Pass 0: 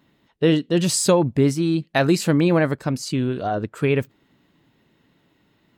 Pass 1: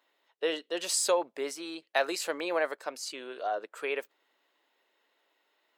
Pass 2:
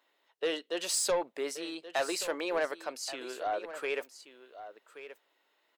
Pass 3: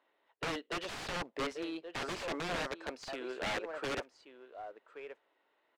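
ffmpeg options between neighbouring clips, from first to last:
-af "highpass=f=480:w=0.5412,highpass=f=480:w=1.3066,volume=0.473"
-af "asoftclip=type=tanh:threshold=0.075,aecho=1:1:1128:0.211"
-af "aeval=exprs='(mod(29.9*val(0)+1,2)-1)/29.9':c=same,acrusher=bits=4:mode=log:mix=0:aa=0.000001,adynamicsmooth=sensitivity=2.5:basefreq=2600,volume=1.12"

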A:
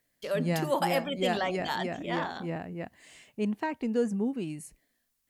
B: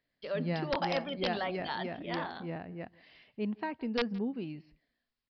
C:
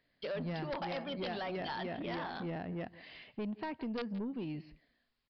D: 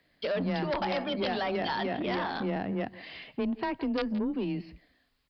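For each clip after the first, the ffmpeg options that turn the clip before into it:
-af "aresample=11025,aeval=exprs='(mod(7.5*val(0)+1,2)-1)/7.5':c=same,aresample=44100,aecho=1:1:167:0.0668,volume=0.596"
-af "acompressor=threshold=0.01:ratio=4,aresample=11025,asoftclip=type=tanh:threshold=0.0106,aresample=44100,volume=2.11"
-af "afreqshift=18,volume=2.51"

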